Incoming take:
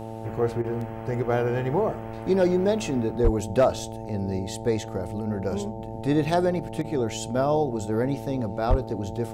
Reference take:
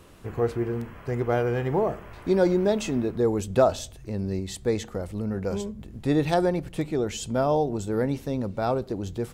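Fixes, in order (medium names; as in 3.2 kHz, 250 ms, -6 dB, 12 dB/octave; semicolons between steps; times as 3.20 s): clip repair -12 dBFS; de-hum 111.7 Hz, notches 8; de-plosive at 3.23/8.69 s; interpolate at 0.62/6.82 s, 21 ms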